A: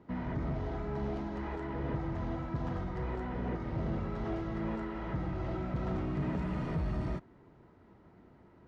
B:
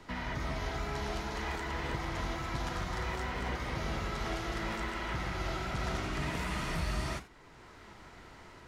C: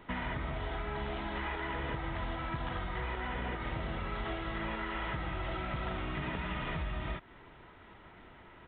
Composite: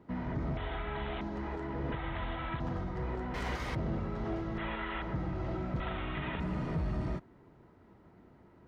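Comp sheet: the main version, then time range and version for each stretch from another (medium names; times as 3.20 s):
A
0.57–1.21 s: from C
1.92–2.60 s: from C
3.34–3.75 s: from B
4.58–5.02 s: from C
5.80–6.40 s: from C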